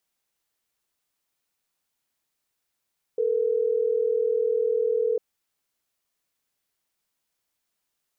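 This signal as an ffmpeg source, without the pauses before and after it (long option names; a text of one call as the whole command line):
ffmpeg -f lavfi -i "aevalsrc='0.0668*(sin(2*PI*440*t)+sin(2*PI*480*t))*clip(min(mod(t,6),2-mod(t,6))/0.005,0,1)':duration=3.12:sample_rate=44100" out.wav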